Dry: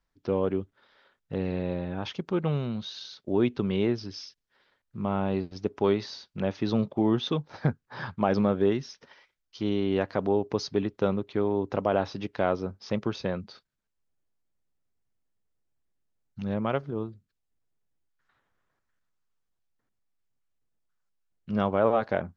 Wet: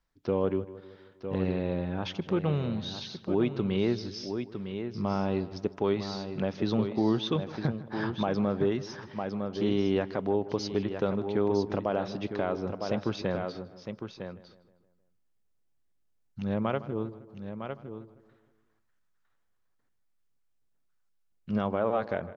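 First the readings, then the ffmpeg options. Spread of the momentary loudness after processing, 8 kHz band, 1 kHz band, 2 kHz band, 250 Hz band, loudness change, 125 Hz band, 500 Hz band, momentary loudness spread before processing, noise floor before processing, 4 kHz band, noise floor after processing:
12 LU, n/a, -2.5 dB, -2.0 dB, -1.0 dB, -2.0 dB, -1.0 dB, -1.5 dB, 12 LU, -80 dBFS, -0.5 dB, -71 dBFS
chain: -filter_complex "[0:a]asplit=2[a][b];[b]aecho=0:1:956:0.335[c];[a][c]amix=inputs=2:normalize=0,alimiter=limit=-16dB:level=0:latency=1:release=264,asplit=2[d][e];[e]adelay=157,lowpass=f=2.6k:p=1,volume=-16dB,asplit=2[f][g];[g]adelay=157,lowpass=f=2.6k:p=1,volume=0.53,asplit=2[h][i];[i]adelay=157,lowpass=f=2.6k:p=1,volume=0.53,asplit=2[j][k];[k]adelay=157,lowpass=f=2.6k:p=1,volume=0.53,asplit=2[l][m];[m]adelay=157,lowpass=f=2.6k:p=1,volume=0.53[n];[f][h][j][l][n]amix=inputs=5:normalize=0[o];[d][o]amix=inputs=2:normalize=0"

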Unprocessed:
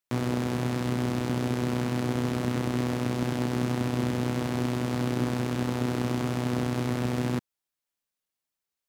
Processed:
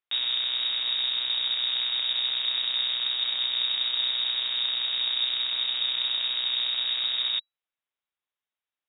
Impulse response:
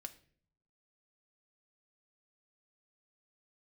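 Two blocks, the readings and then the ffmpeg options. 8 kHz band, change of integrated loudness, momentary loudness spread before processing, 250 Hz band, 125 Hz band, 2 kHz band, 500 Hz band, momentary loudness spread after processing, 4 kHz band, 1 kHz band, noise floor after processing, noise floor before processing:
under -35 dB, +4.0 dB, 1 LU, under -30 dB, under -35 dB, +1.0 dB, under -20 dB, 1 LU, +20.5 dB, -10.5 dB, under -85 dBFS, under -85 dBFS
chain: -af "lowpass=f=3.3k:t=q:w=0.5098,lowpass=f=3.3k:t=q:w=0.6013,lowpass=f=3.3k:t=q:w=0.9,lowpass=f=3.3k:t=q:w=2.563,afreqshift=-3900"

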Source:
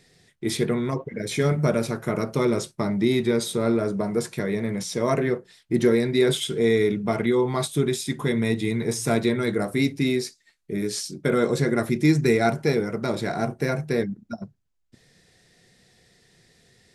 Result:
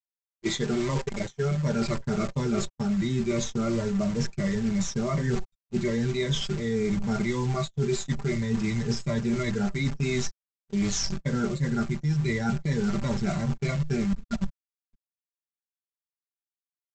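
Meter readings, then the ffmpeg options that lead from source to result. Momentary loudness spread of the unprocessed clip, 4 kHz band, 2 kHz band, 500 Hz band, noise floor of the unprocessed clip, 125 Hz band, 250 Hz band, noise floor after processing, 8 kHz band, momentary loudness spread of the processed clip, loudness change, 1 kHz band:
8 LU, -3.5 dB, -5.5 dB, -8.0 dB, -66 dBFS, 0.0 dB, -3.0 dB, under -85 dBFS, -2.0 dB, 3 LU, -4.0 dB, -6.0 dB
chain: -filter_complex "[0:a]afftfilt=real='re*pow(10,14/40*sin(2*PI*(1.1*log(max(b,1)*sr/1024/100)/log(2)-(-2.8)*(pts-256)/sr)))':imag='im*pow(10,14/40*sin(2*PI*(1.1*log(max(b,1)*sr/1024/100)/log(2)-(-2.8)*(pts-256)/sr)))':win_size=1024:overlap=0.75,asplit=2[a][b];[b]adelay=100,highpass=300,lowpass=3.4k,asoftclip=type=hard:threshold=-14.5dB,volume=-28dB[c];[a][c]amix=inputs=2:normalize=0,afftfilt=real='re*gte(hypot(re,im),0.0178)':imag='im*gte(hypot(re,im),0.0178)':win_size=1024:overlap=0.75,aresample=16000,acrusher=bits=6:dc=4:mix=0:aa=0.000001,aresample=44100,aecho=1:1:5.1:0.63,asubboost=boost=8:cutoff=130,areverse,acompressor=threshold=-23dB:ratio=12,areverse,agate=range=-26dB:threshold=-30dB:ratio=16:detection=peak,adynamicequalizer=threshold=0.00447:dfrequency=3400:dqfactor=1.1:tfrequency=3400:tqfactor=1.1:attack=5:release=100:ratio=0.375:range=2:mode=cutabove:tftype=bell"

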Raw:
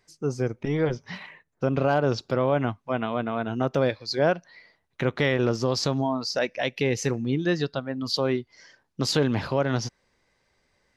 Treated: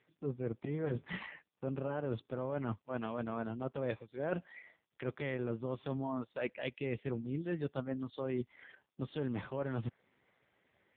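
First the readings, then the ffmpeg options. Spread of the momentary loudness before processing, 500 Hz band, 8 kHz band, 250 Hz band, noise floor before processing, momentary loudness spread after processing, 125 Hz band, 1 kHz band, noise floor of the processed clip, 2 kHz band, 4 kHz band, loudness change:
7 LU, -13.5 dB, under -40 dB, -11.5 dB, -72 dBFS, 6 LU, -12.0 dB, -15.0 dB, -83 dBFS, -14.5 dB, -23.0 dB, -13.5 dB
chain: -af "bandreject=f=710:w=17,areverse,acompressor=threshold=-34dB:ratio=12,areverse,volume=1.5dB" -ar 8000 -c:a libopencore_amrnb -b:a 5150

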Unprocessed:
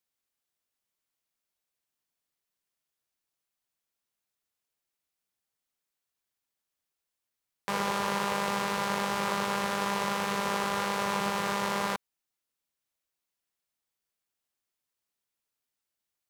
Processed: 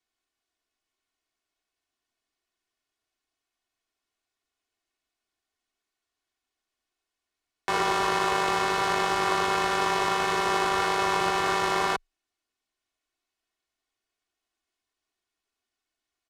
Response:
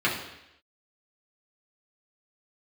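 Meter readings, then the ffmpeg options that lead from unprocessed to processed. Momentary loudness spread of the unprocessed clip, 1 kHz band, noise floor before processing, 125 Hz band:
2 LU, +5.5 dB, under -85 dBFS, 0.0 dB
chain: -af "aecho=1:1:2.7:0.72,afreqshift=-22,adynamicsmooth=sensitivity=4.5:basefreq=7.1k,volume=4dB"

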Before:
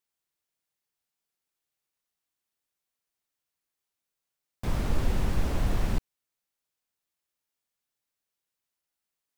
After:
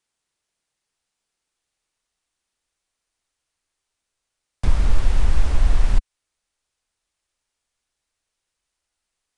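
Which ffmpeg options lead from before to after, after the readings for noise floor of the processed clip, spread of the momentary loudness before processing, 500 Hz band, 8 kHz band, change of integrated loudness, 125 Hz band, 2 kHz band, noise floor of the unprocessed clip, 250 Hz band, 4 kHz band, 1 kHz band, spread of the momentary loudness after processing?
-82 dBFS, 5 LU, 0.0 dB, +4.0 dB, +7.5 dB, +6.5 dB, +4.5 dB, under -85 dBFS, -2.0 dB, +4.5 dB, +3.0 dB, 4 LU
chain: -filter_complex "[0:a]asubboost=boost=5:cutoff=66,aresample=22050,aresample=44100,acrossover=split=320|690[a][b][c];[a]acompressor=threshold=-20dB:ratio=4[d];[b]acompressor=threshold=-54dB:ratio=4[e];[c]acompressor=threshold=-44dB:ratio=4[f];[d][e][f]amix=inputs=3:normalize=0,volume=8.5dB"

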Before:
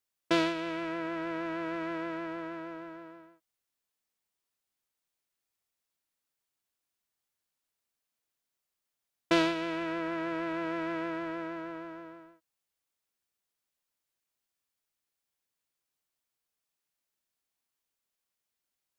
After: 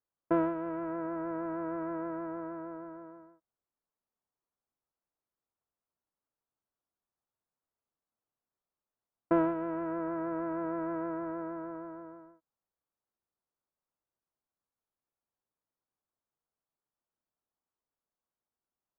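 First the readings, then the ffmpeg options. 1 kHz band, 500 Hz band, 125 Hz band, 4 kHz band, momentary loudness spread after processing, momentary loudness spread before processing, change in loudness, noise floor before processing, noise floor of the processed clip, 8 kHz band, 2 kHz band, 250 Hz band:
-1.0 dB, 0.0 dB, 0.0 dB, under -30 dB, 15 LU, 16 LU, -1.5 dB, under -85 dBFS, under -85 dBFS, under -25 dB, -10.5 dB, 0.0 dB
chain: -af "lowpass=f=1.3k:w=0.5412,lowpass=f=1.3k:w=1.3066"

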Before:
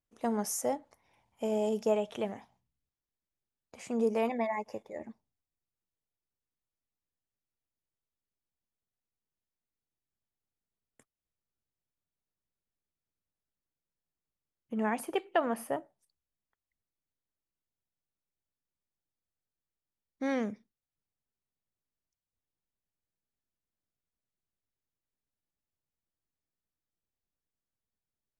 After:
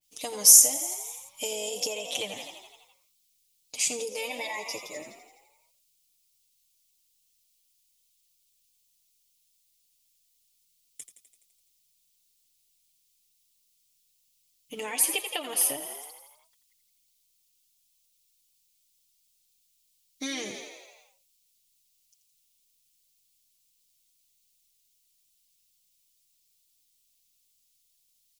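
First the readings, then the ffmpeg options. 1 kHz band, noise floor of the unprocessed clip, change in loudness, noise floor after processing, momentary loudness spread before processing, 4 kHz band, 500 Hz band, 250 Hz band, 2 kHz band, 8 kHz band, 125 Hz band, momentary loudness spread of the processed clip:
-4.5 dB, under -85 dBFS, +9.0 dB, -70 dBFS, 13 LU, +18.5 dB, -5.0 dB, -9.0 dB, +5.0 dB, +22.5 dB, n/a, 24 LU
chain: -filter_complex "[0:a]aecho=1:1:6.7:0.93,asplit=9[a][b][c][d][e][f][g][h][i];[b]adelay=84,afreqshift=43,volume=-11dB[j];[c]adelay=168,afreqshift=86,volume=-14.9dB[k];[d]adelay=252,afreqshift=129,volume=-18.8dB[l];[e]adelay=336,afreqshift=172,volume=-22.6dB[m];[f]adelay=420,afreqshift=215,volume=-26.5dB[n];[g]adelay=504,afreqshift=258,volume=-30.4dB[o];[h]adelay=588,afreqshift=301,volume=-34.3dB[p];[i]adelay=672,afreqshift=344,volume=-38.1dB[q];[a][j][k][l][m][n][o][p][q]amix=inputs=9:normalize=0,acompressor=threshold=-31dB:ratio=6,aexciter=amount=12.8:drive=5.4:freq=2.4k,adynamicequalizer=threshold=0.02:dfrequency=3200:dqfactor=0.7:tfrequency=3200:tqfactor=0.7:attack=5:release=100:ratio=0.375:range=2:mode=cutabove:tftype=highshelf,volume=-2.5dB"

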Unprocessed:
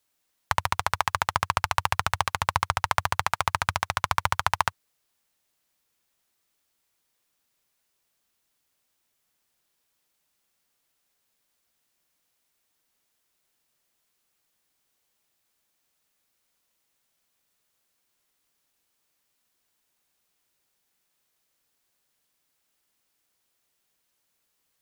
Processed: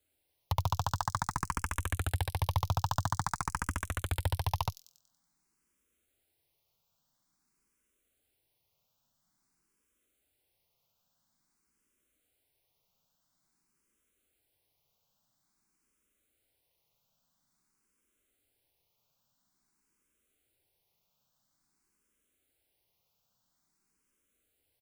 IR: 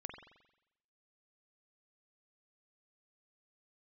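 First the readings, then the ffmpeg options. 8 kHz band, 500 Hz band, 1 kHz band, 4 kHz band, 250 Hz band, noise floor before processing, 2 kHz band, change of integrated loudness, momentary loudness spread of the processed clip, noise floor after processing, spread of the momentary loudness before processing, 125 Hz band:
-6.0 dB, -7.5 dB, -10.0 dB, -10.0 dB, +1.5 dB, -76 dBFS, -12.5 dB, -7.5 dB, 4 LU, -79 dBFS, 2 LU, +2.5 dB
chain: -filter_complex "[0:a]lowshelf=f=480:g=10.5,bandreject=f=1.8k:w=12,acrossover=split=5400[a][b];[a]asoftclip=type=tanh:threshold=-16.5dB[c];[b]aecho=1:1:94|188|282|376|470|564:0.501|0.231|0.106|0.0488|0.0224|0.0103[d];[c][d]amix=inputs=2:normalize=0,asplit=2[e][f];[f]afreqshift=0.49[g];[e][g]amix=inputs=2:normalize=1,volume=-2dB"

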